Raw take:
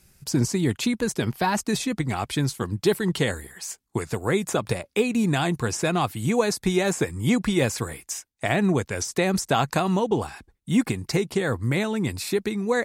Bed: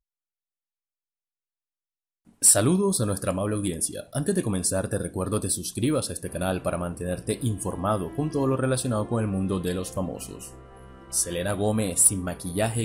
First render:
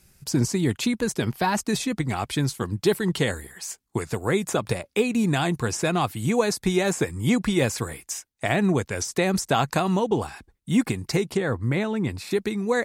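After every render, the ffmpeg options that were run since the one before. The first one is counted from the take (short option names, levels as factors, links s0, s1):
-filter_complex "[0:a]asettb=1/sr,asplit=3[s0][s1][s2];[s0]atrim=end=11.374[s3];[s1]atrim=start=11.37:end=12.31,asetpts=PTS-STARTPTS,afade=t=in:d=0.004:c=qsin,afade=t=out:st=0.936:d=0.004:c=qsin,highshelf=f=4400:g=-11.5[s4];[s2]atrim=start=12.306[s5];[s3][s4]acrossfade=d=0.004:c1=hsin:c2=qsin[s6];[s6][s5]acrossfade=d=0.004:c1=qsin:c2=hsin"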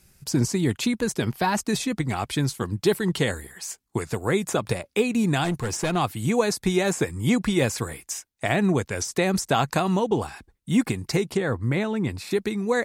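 -filter_complex "[0:a]asettb=1/sr,asplit=3[s0][s1][s2];[s0]atrim=end=5.444[s3];[s1]atrim=start=5.44:end=5.96,asetpts=PTS-STARTPTS,afade=t=in:d=0.004:c=qsin,afade=t=out:st=0.516:d=0.004:c=qsin,aeval=exprs='clip(val(0),-1,0.0668)':c=same[s4];[s2]atrim=start=5.956[s5];[s3][s4]acrossfade=d=0.004:c1=hsin:c2=qsin[s6];[s6][s5]acrossfade=d=0.004:c1=qsin:c2=hsin"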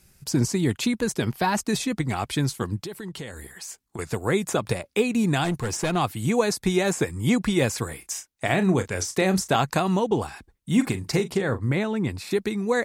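-filter_complex "[0:a]asettb=1/sr,asplit=3[s0][s1][s2];[s0]atrim=end=2.794[s3];[s1]atrim=start=2.79:end=3.99,asetpts=PTS-STARTPTS,afade=t=in:d=0.004:c=qsin,afade=t=out:st=1.196:d=0.004:c=qsin,acompressor=threshold=0.0224:ratio=5:attack=3.2:release=140:knee=1:detection=peak[s4];[s2]atrim=start=3.986[s5];[s3][s4]acrossfade=d=0.004:c1=hsin:c2=qsin[s6];[s6][s5]acrossfade=d=0.004:c1=qsin:c2=hsin,asettb=1/sr,asplit=3[s7][s8][s9];[s7]atrim=end=7.984[s10];[s8]atrim=start=7.98:end=9.56,asetpts=PTS-STARTPTS,afade=t=in:d=0.004:c=qsin,afade=t=out:st=1.576:d=0.004:c=qsin,asplit=2[s11][s12];[s12]adelay=32,volume=0.316[s13];[s11][s13]amix=inputs=2:normalize=0,atrim=end_sample=69678[s14];[s9]atrim=start=9.556[s15];[s10][s14]acrossfade=d=0.004:c1=hsin:c2=qsin[s16];[s16][s15]acrossfade=d=0.004:c1=qsin:c2=hsin,asettb=1/sr,asplit=3[s17][s18][s19];[s17]atrim=end=10.724[s20];[s18]atrim=start=10.72:end=11.72,asetpts=PTS-STARTPTS,afade=t=in:d=0.004:c=qsin,afade=t=out:st=0.996:d=0.004:c=qsin,asplit=2[s21][s22];[s22]adelay=40,volume=0.251[s23];[s21][s23]amix=inputs=2:normalize=0,atrim=end_sample=44100[s24];[s19]atrim=start=11.716[s25];[s20][s24]acrossfade=d=0.004:c1=hsin:c2=qsin[s26];[s26][s25]acrossfade=d=0.004:c1=qsin:c2=hsin"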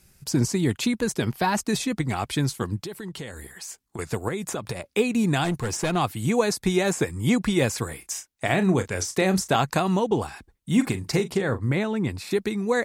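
-filter_complex "[0:a]asettb=1/sr,asplit=3[s0][s1][s2];[s0]atrim=end=4.284[s3];[s1]atrim=start=4.28:end=4.86,asetpts=PTS-STARTPTS,afade=t=in:d=0.004:c=qsin,afade=t=out:st=0.576:d=0.004:c=qsin,acompressor=threshold=0.0501:ratio=4:attack=3.2:release=140:knee=1:detection=peak[s4];[s2]atrim=start=4.856[s5];[s3][s4]acrossfade=d=0.004:c1=hsin:c2=qsin[s6];[s6][s5]acrossfade=d=0.004:c1=qsin:c2=hsin"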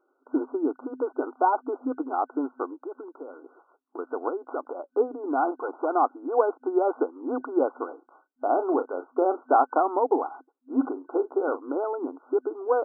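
-af "afftfilt=real='re*between(b*sr/4096,250,1500)':imag='im*between(b*sr/4096,250,1500)':win_size=4096:overlap=0.75,adynamicequalizer=threshold=0.00794:dfrequency=790:dqfactor=3.3:tfrequency=790:tqfactor=3.3:attack=5:release=100:ratio=0.375:range=3:mode=boostabove:tftype=bell"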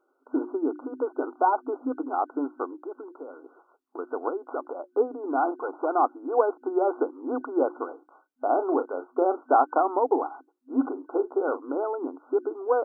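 -af "bandreject=f=60:t=h:w=6,bandreject=f=120:t=h:w=6,bandreject=f=180:t=h:w=6,bandreject=f=240:t=h:w=6,bandreject=f=300:t=h:w=6,bandreject=f=360:t=h:w=6"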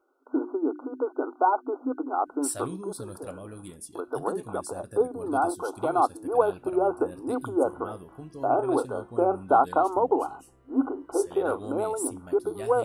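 -filter_complex "[1:a]volume=0.168[s0];[0:a][s0]amix=inputs=2:normalize=0"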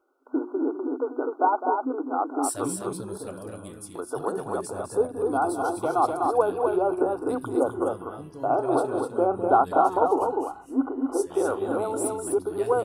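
-af "aecho=1:1:207|250.7:0.282|0.631"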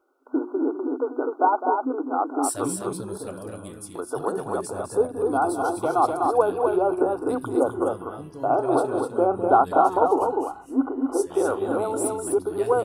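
-af "volume=1.26"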